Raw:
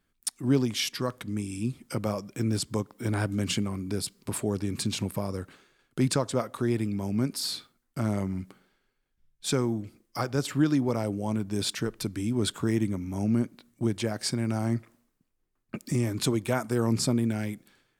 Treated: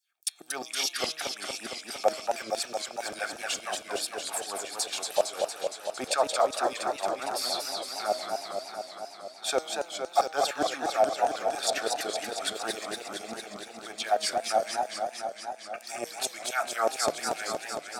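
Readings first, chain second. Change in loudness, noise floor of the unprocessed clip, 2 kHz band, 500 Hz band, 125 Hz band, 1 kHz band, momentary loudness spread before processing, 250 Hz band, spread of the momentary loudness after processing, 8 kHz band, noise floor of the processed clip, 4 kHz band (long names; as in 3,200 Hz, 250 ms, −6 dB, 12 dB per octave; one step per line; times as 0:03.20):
−1.0 dB, −76 dBFS, +4.5 dB, +3.0 dB, below −25 dB, +10.0 dB, 9 LU, −16.0 dB, 10 LU, +3.0 dB, −48 dBFS, +3.0 dB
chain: parametric band 720 Hz +12.5 dB 0.55 octaves
auto-filter high-pass saw down 4.8 Hz 500–6,800 Hz
notch comb filter 1,000 Hz
hum removal 158 Hz, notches 27
feedback echo with a swinging delay time 230 ms, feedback 76%, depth 172 cents, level −4.5 dB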